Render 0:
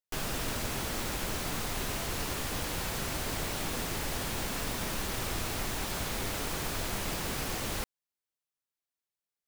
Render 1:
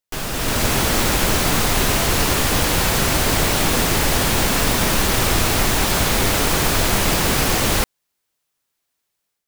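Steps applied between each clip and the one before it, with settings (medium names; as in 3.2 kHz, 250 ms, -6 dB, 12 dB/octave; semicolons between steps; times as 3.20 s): level rider gain up to 9 dB; trim +7.5 dB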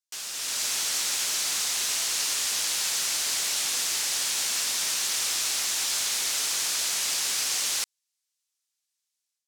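band-pass filter 6.4 kHz, Q 1.1; trim -1 dB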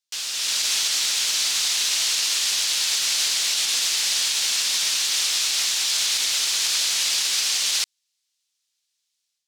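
peaking EQ 3.7 kHz +10 dB 1.9 oct; peak limiter -12.5 dBFS, peak gain reduction 4.5 dB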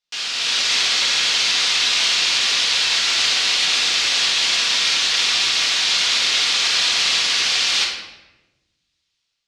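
low-pass 4 kHz 12 dB/octave; simulated room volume 520 m³, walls mixed, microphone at 1.8 m; trim +5 dB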